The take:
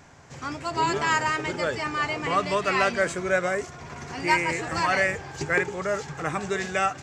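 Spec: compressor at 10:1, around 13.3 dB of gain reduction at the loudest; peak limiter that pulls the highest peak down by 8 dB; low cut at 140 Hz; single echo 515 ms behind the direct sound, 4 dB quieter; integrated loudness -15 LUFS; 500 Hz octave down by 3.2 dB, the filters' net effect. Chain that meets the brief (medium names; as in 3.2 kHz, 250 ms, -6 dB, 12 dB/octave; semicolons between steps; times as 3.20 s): high-pass 140 Hz; peaking EQ 500 Hz -4 dB; compression 10:1, threshold -32 dBFS; peak limiter -28 dBFS; delay 515 ms -4 dB; trim +21.5 dB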